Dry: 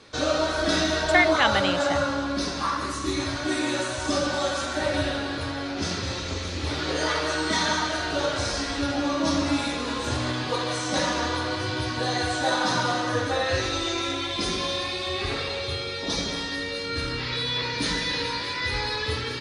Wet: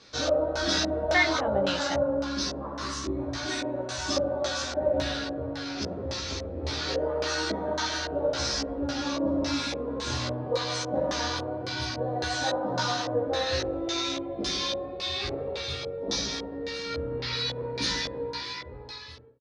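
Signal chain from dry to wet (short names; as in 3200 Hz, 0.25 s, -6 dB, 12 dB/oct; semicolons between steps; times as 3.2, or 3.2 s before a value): ending faded out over 1.51 s; LFO low-pass square 1.8 Hz 570–5600 Hz; doubler 15 ms -2.5 dB; gain -6.5 dB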